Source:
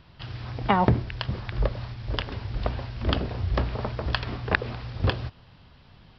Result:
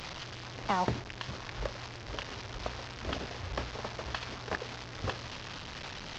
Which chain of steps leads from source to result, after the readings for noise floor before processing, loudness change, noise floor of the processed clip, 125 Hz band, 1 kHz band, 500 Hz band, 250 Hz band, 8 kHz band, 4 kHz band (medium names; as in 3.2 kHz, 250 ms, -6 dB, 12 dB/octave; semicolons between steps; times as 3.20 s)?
-54 dBFS, -9.5 dB, -45 dBFS, -13.5 dB, -6.5 dB, -8.0 dB, -11.0 dB, no reading, -4.5 dB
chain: one-bit delta coder 32 kbps, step -27 dBFS; bass shelf 310 Hz -9 dB; trim -6 dB